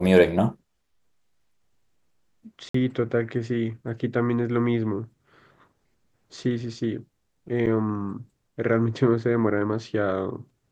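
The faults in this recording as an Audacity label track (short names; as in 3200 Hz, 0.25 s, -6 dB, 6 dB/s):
2.690000	2.740000	gap 54 ms
7.660000	7.670000	gap 6.9 ms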